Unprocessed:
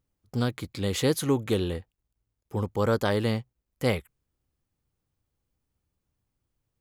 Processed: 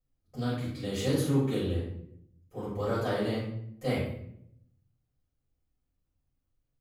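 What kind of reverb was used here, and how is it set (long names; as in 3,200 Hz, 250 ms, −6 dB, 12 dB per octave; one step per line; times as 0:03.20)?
rectangular room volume 150 cubic metres, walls mixed, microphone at 5.5 metres
level −20.5 dB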